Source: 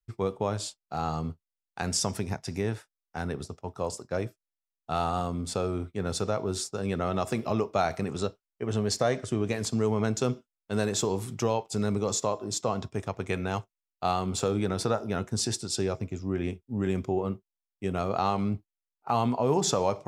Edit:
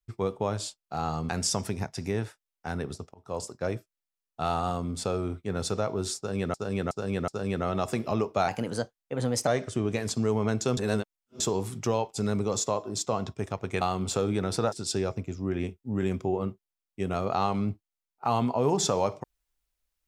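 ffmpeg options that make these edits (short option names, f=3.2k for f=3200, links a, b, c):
-filter_complex "[0:a]asplit=12[a][b][c][d][e][f][g][h][i][j][k][l];[a]atrim=end=1.292[m];[b]atrim=start=1.788:end=3.64,asetpts=PTS-STARTPTS,afade=t=out:st=1.848:d=0.004:c=hsin[n];[c]atrim=start=3.64:end=7.042,asetpts=PTS-STARTPTS,afade=t=in:d=0.27[o];[d]atrim=start=6.668:end=7.042[p];[e]atrim=start=6.668:end=7.042[q];[f]atrim=start=6.668:end=7.874[r];[g]atrim=start=7.87:end=9.03,asetpts=PTS-STARTPTS,asetrate=51597,aresample=44100,atrim=end_sample=43723,asetpts=PTS-STARTPTS[s];[h]atrim=start=9.026:end=10.332[t];[i]atrim=start=10.328:end=10.962,asetpts=PTS-STARTPTS,areverse[u];[j]atrim=start=10.958:end=13.372[v];[k]atrim=start=14.078:end=14.992[w];[l]atrim=start=15.558[x];[n][o]concat=n=2:v=0:a=1[y];[m][y]acrossfade=d=0.004:c1=hsin:c2=hsin[z];[z][p]acrossfade=d=0.004:c1=hsin:c2=hsin[aa];[aa][q]acrossfade=d=0.004:c1=hsin:c2=hsin[ab];[ab][r]acrossfade=d=0.004:c1=hsin:c2=hsin[ac];[ac][s]acrossfade=d=0.004:c1=hsin:c2=hsin[ad];[ad][t]acrossfade=d=0.004:c1=hsin:c2=hsin[ae];[ae][u]acrossfade=d=0.004:c1=hsin:c2=hsin[af];[af][v]acrossfade=d=0.004:c1=hsin:c2=hsin[ag];[ag][w]acrossfade=d=0.004:c1=hsin:c2=hsin[ah];[ah][x]acrossfade=d=0.004:c1=hsin:c2=hsin"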